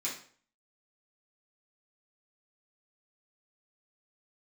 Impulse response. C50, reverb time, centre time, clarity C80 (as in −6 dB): 6.5 dB, 0.50 s, 30 ms, 11.0 dB